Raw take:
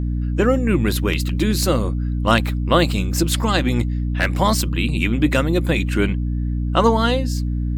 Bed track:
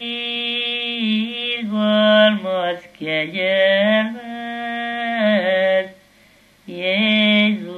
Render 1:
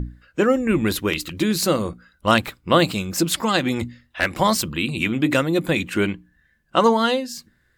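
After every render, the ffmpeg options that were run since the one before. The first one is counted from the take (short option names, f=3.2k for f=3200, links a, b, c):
-af "bandreject=f=60:t=h:w=6,bandreject=f=120:t=h:w=6,bandreject=f=180:t=h:w=6,bandreject=f=240:t=h:w=6,bandreject=f=300:t=h:w=6"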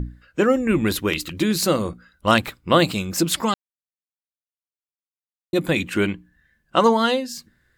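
-filter_complex "[0:a]asplit=3[a][b][c];[a]atrim=end=3.54,asetpts=PTS-STARTPTS,afade=t=out:st=3.536:d=0.004:c=hsin[d];[b]atrim=start=3.54:end=5.53,asetpts=PTS-STARTPTS,volume=0[e];[c]atrim=start=5.53,asetpts=PTS-STARTPTS,afade=t=in:d=0.004:c=hsin[f];[d][e][f]concat=n=3:v=0:a=1"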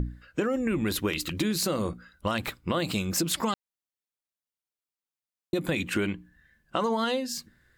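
-af "alimiter=limit=-12.5dB:level=0:latency=1:release=38,acompressor=threshold=-24dB:ratio=6"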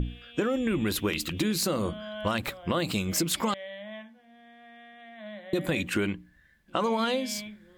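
-filter_complex "[1:a]volume=-26dB[a];[0:a][a]amix=inputs=2:normalize=0"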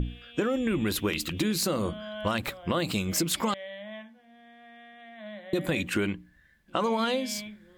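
-af anull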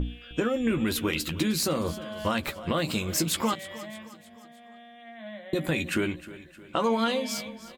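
-filter_complex "[0:a]asplit=2[a][b];[b]adelay=13,volume=-7dB[c];[a][c]amix=inputs=2:normalize=0,aecho=1:1:309|618|927|1236:0.141|0.0706|0.0353|0.0177"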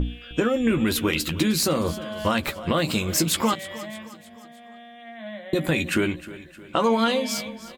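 -af "volume=4.5dB"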